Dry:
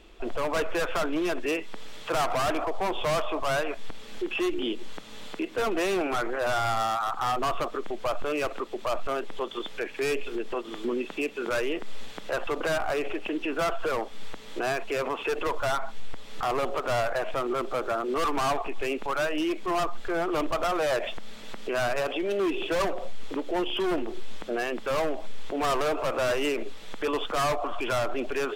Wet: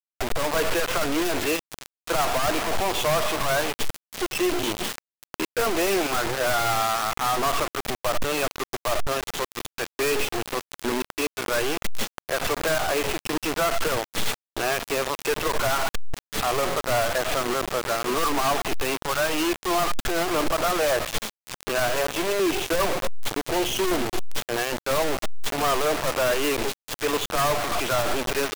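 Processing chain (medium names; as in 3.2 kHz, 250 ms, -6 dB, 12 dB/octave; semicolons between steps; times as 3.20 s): in parallel at +2 dB: peak limiter -29.5 dBFS, peak gain reduction 9 dB; on the sum: crossover distortion -49.5 dBFS; bit crusher 4-bit; trim -2.5 dB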